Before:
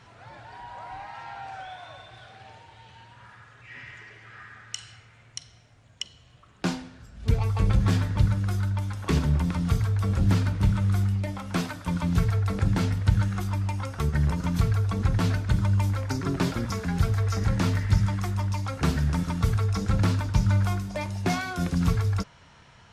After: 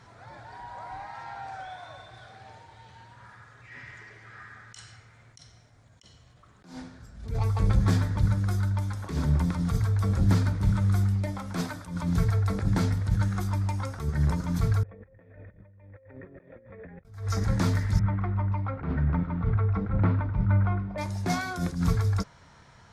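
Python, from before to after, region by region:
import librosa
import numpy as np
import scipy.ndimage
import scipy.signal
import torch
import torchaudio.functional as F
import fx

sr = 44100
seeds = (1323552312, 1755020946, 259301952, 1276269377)

y = fx.chain(x, sr, fx.formant_cascade(vowel='e'),
    fx.over_compress(threshold_db=-47.0, ratio=-0.5), at=(14.83, 17.05))
y = fx.chain(y, sr, fx.lowpass(hz=2300.0, slope=24),
    fx.notch(hz=1700.0, q=12.0), at=(17.99, 20.98))
y = fx.peak_eq(y, sr, hz=2800.0, db=-9.5, octaves=0.42)
y = fx.attack_slew(y, sr, db_per_s=120.0)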